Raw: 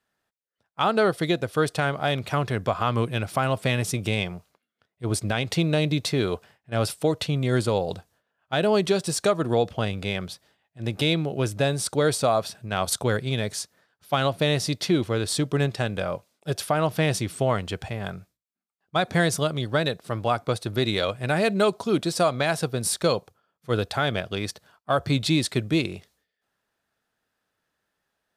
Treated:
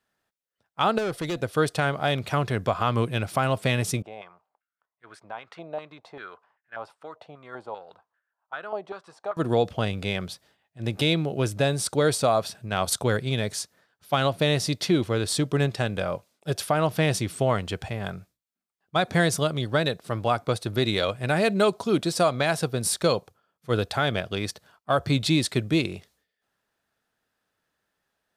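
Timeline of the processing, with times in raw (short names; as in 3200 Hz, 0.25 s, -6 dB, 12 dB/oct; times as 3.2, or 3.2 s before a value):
0.98–1.39 tube stage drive 25 dB, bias 0.25
4.02–9.37 stepped band-pass 5.1 Hz 740–1600 Hz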